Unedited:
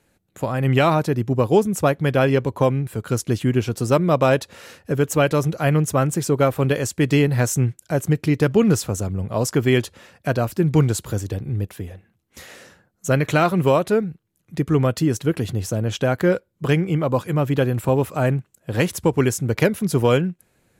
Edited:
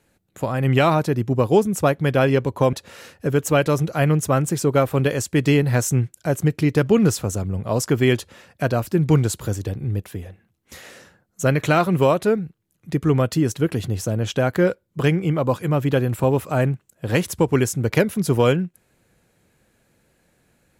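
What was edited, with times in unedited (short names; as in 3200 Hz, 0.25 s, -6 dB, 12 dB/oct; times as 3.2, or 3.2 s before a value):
2.73–4.38 cut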